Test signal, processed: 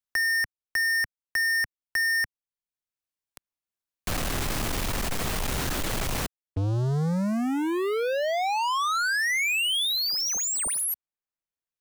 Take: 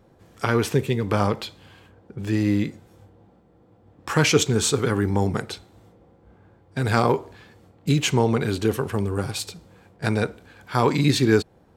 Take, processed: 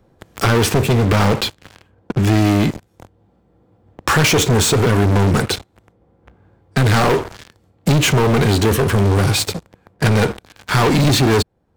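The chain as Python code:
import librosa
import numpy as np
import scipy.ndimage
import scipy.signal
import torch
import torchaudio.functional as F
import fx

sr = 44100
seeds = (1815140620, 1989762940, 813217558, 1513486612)

y = fx.low_shelf(x, sr, hz=86.0, db=6.0)
y = fx.leveller(y, sr, passes=5)
y = 10.0 ** (-8.0 / 20.0) * np.tanh(y / 10.0 ** (-8.0 / 20.0))
y = fx.band_squash(y, sr, depth_pct=40)
y = y * librosa.db_to_amplitude(-2.5)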